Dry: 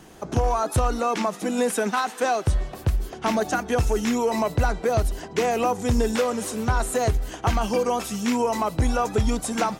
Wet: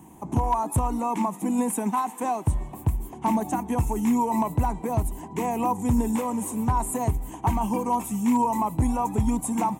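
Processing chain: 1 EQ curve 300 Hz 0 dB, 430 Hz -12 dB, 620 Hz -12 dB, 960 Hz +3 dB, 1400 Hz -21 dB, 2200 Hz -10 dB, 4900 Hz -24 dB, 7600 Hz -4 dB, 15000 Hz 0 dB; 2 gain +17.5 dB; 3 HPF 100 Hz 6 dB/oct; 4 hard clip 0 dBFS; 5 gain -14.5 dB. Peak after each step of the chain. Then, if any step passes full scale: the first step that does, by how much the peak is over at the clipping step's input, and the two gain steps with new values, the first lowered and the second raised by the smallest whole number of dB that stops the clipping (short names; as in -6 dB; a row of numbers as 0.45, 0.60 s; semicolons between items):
-11.5, +6.0, +4.5, 0.0, -14.5 dBFS; step 2, 4.5 dB; step 2 +12.5 dB, step 5 -9.5 dB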